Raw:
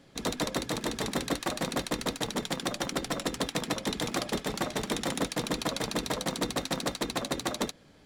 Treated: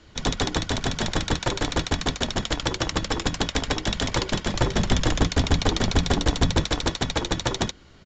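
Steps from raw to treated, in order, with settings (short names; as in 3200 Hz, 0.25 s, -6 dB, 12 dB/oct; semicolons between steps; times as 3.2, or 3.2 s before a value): 4.54–6.65 low shelf 360 Hz +8.5 dB; frequency shift -220 Hz; downsampling 16000 Hz; gain +7 dB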